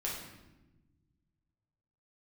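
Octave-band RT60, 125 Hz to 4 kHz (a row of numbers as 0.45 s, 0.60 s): 2.5 s, 2.0 s, 1.3 s, 0.95 s, 0.90 s, 0.80 s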